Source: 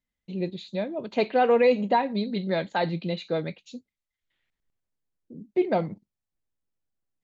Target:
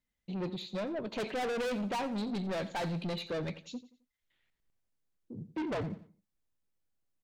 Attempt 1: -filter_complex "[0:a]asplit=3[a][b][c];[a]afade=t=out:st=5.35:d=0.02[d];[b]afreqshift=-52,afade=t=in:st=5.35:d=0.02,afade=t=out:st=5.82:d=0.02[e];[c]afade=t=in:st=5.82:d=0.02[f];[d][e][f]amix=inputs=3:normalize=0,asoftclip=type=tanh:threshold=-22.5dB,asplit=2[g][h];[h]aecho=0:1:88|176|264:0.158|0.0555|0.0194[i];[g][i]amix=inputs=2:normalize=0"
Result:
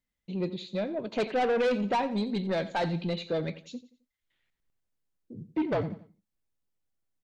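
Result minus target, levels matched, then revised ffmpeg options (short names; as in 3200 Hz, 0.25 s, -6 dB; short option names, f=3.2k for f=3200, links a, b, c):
soft clip: distortion -6 dB
-filter_complex "[0:a]asplit=3[a][b][c];[a]afade=t=out:st=5.35:d=0.02[d];[b]afreqshift=-52,afade=t=in:st=5.35:d=0.02,afade=t=out:st=5.82:d=0.02[e];[c]afade=t=in:st=5.82:d=0.02[f];[d][e][f]amix=inputs=3:normalize=0,asoftclip=type=tanh:threshold=-32dB,asplit=2[g][h];[h]aecho=0:1:88|176|264:0.158|0.0555|0.0194[i];[g][i]amix=inputs=2:normalize=0"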